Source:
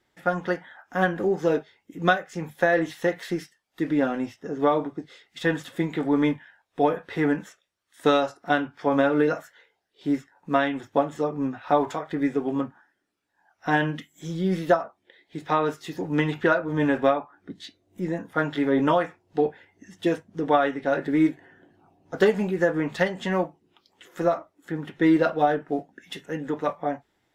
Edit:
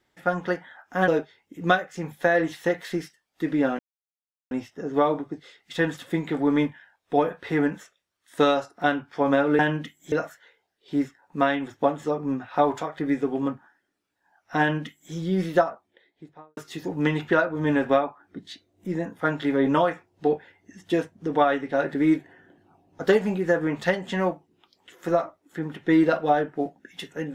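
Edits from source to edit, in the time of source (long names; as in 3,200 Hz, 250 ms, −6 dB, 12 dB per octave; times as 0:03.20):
0:01.08–0:01.46: remove
0:04.17: splice in silence 0.72 s
0:13.73–0:14.26: duplicate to 0:09.25
0:14.82–0:15.70: fade out and dull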